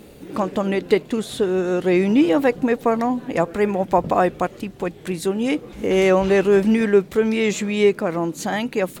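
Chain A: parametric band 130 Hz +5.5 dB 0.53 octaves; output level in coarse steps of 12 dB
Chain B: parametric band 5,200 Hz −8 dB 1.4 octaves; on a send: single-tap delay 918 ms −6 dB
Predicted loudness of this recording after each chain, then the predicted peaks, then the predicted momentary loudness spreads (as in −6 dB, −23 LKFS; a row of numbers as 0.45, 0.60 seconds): −25.5, −19.5 LKFS; −4.5, −2.5 dBFS; 8, 8 LU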